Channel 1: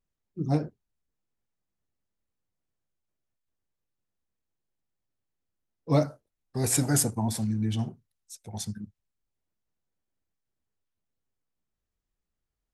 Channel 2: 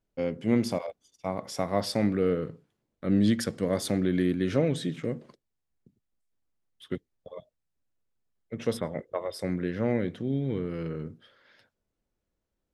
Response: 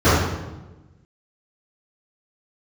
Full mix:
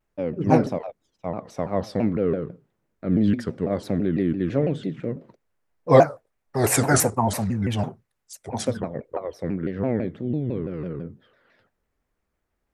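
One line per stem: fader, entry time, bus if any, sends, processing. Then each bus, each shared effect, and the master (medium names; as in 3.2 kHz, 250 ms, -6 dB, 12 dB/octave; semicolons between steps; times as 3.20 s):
+3.0 dB, 0.00 s, no send, high-order bell 1 kHz +10 dB 2.8 oct
+3.0 dB, 0.00 s, no send, low-pass 1.2 kHz 6 dB/octave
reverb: none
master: vibrato with a chosen wave saw down 6 Hz, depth 250 cents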